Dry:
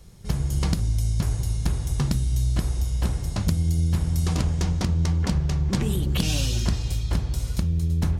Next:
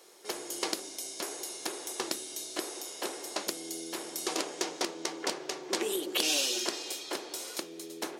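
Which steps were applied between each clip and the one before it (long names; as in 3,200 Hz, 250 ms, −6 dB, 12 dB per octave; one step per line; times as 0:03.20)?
dynamic equaliser 1,100 Hz, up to −4 dB, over −44 dBFS, Q 0.82
elliptic high-pass filter 340 Hz, stop band 80 dB
level +3 dB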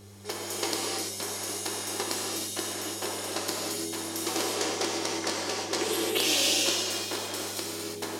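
hum with harmonics 100 Hz, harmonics 4, −52 dBFS −3 dB per octave
reverb whose tail is shaped and stops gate 370 ms flat, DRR −3.5 dB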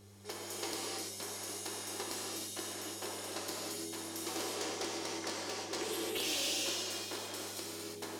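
soft clipping −20.5 dBFS, distortion −17 dB
level −8 dB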